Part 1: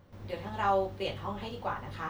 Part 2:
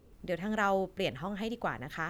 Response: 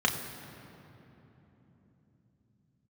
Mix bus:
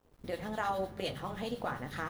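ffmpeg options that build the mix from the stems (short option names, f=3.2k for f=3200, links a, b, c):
-filter_complex "[0:a]highshelf=f=5.8k:g=10.5,acrossover=split=930[a][b];[a]aeval=exprs='val(0)*(1-0.7/2+0.7/2*cos(2*PI*9.8*n/s))':c=same[c];[b]aeval=exprs='val(0)*(1-0.7/2-0.7/2*cos(2*PI*9.8*n/s))':c=same[d];[c][d]amix=inputs=2:normalize=0,equalizer=f=100:t=o:w=0.33:g=6,equalizer=f=160:t=o:w=0.33:g=11,equalizer=f=1k:t=o:w=0.33:g=-5,equalizer=f=4k:t=o:w=0.33:g=3,equalizer=f=10k:t=o:w=0.33:g=10,volume=-2dB,asplit=2[e][f];[f]volume=-23dB[g];[1:a]acompressor=threshold=-34dB:ratio=6,adelay=0.7,volume=0dB,asplit=3[h][i][j];[i]volume=-20dB[k];[j]apad=whole_len=92601[l];[e][l]sidechaingate=range=-33dB:threshold=-47dB:ratio=16:detection=peak[m];[2:a]atrim=start_sample=2205[n];[g][k]amix=inputs=2:normalize=0[o];[o][n]afir=irnorm=-1:irlink=0[p];[m][h][p]amix=inputs=3:normalize=0,bandreject=f=50:t=h:w=6,bandreject=f=100:t=h:w=6,aeval=exprs='sgn(val(0))*max(abs(val(0))-0.00112,0)':c=same"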